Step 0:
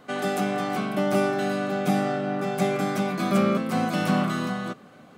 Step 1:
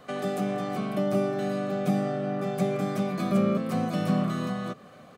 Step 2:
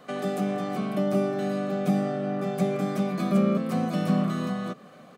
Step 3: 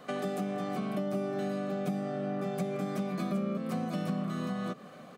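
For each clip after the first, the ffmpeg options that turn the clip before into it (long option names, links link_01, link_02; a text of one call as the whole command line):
ffmpeg -i in.wav -filter_complex "[0:a]acrossover=split=490[link_01][link_02];[link_02]acompressor=threshold=-38dB:ratio=3[link_03];[link_01][link_03]amix=inputs=2:normalize=0,aecho=1:1:1.7:0.36" out.wav
ffmpeg -i in.wav -af "lowshelf=frequency=130:width_type=q:width=1.5:gain=-7.5" out.wav
ffmpeg -i in.wav -af "acompressor=threshold=-31dB:ratio=4" out.wav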